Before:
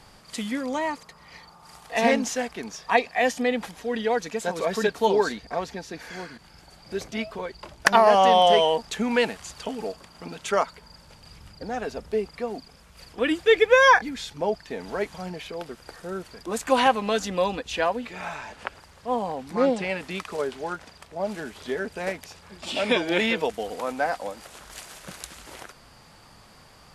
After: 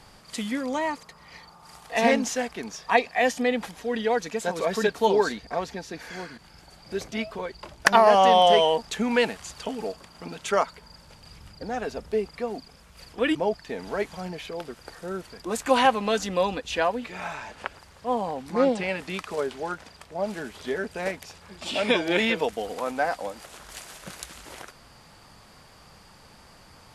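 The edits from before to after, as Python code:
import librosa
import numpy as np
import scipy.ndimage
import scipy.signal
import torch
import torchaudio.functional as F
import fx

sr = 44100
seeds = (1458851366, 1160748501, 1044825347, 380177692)

y = fx.edit(x, sr, fx.cut(start_s=13.35, length_s=1.01), tone=tone)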